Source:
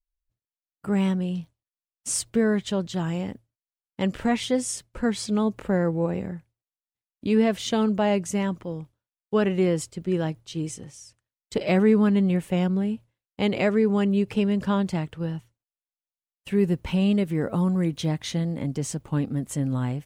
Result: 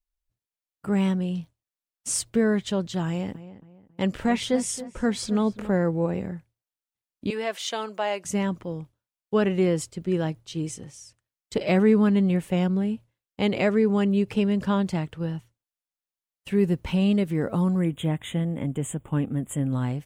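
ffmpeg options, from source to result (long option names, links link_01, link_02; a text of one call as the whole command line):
ffmpeg -i in.wav -filter_complex "[0:a]asettb=1/sr,asplit=3[link_01][link_02][link_03];[link_01]atrim=end=3.074[link_04];[link_02]atrim=start=3.07:end=5.69,asetpts=PTS-STARTPTS,afade=type=in:duration=0.004:curve=qsin,afade=type=out:start_time=2.616:duration=0.004:curve=qsin,asplit=2[link_05][link_06];[link_06]adelay=274,lowpass=frequency=2000:poles=1,volume=-14dB,asplit=2[link_07][link_08];[link_08]adelay=274,lowpass=frequency=2000:poles=1,volume=0.36,asplit=2[link_09][link_10];[link_10]adelay=274,lowpass=frequency=2000:poles=1,volume=0.36[link_11];[link_05][link_07][link_09][link_11]amix=inputs=4:normalize=0,atrim=end_sample=115542[link_12];[link_03]atrim=start=5.686[link_13];[link_04][link_12]acrossfade=duration=0.004:curve1=hsin:curve2=qsin[link_14];[link_14][link_13]acrossfade=duration=0.004:curve1=qsin:curve2=hsin,asettb=1/sr,asplit=3[link_15][link_16][link_17];[link_15]atrim=end=7.304[link_18];[link_16]atrim=start=7.3:end=8.25,asetpts=PTS-STARTPTS,afade=type=in:duration=0.004:curve=qsin,afade=type=out:start_time=0.946:duration=0.004:curve=qsin,highpass=640[link_19];[link_17]atrim=start=8.246[link_20];[link_18][link_19]acrossfade=duration=0.004:curve1=hsin:curve2=qsin[link_21];[link_21][link_20]acrossfade=duration=0.004:curve1=qsin:curve2=hsin,asettb=1/sr,asplit=3[link_22][link_23][link_24];[link_22]atrim=end=17.794[link_25];[link_23]atrim=start=17.79:end=19.73,asetpts=PTS-STARTPTS,afade=type=in:duration=0.004:curve=qsin,afade=type=out:start_time=1.936:duration=0.004:curve=qsin,asuperstop=centerf=5000:order=12:qfactor=1.5[link_26];[link_24]atrim=start=19.726[link_27];[link_25][link_26]acrossfade=duration=0.004:curve1=hsin:curve2=qsin[link_28];[link_28][link_27]acrossfade=duration=0.004:curve1=qsin:curve2=hsin" out.wav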